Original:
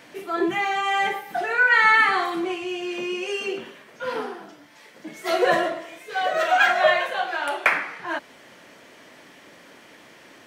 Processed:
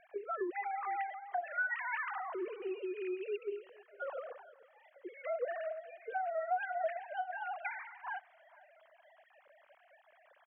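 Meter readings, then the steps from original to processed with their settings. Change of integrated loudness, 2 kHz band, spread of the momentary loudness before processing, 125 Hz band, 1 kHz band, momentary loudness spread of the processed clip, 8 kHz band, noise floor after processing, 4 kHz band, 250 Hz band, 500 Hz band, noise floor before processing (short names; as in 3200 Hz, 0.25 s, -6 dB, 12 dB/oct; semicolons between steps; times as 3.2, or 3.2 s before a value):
-17.0 dB, -19.0 dB, 15 LU, under -35 dB, -15.0 dB, 10 LU, under -35 dB, -67 dBFS, under -30 dB, -16.0 dB, -13.0 dB, -50 dBFS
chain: sine-wave speech; LPF 1200 Hz 6 dB/oct; compressor 3:1, threshold -36 dBFS, peak gain reduction 19.5 dB; on a send: feedback echo 0.459 s, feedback 21%, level -22.5 dB; on the sum: gain -2 dB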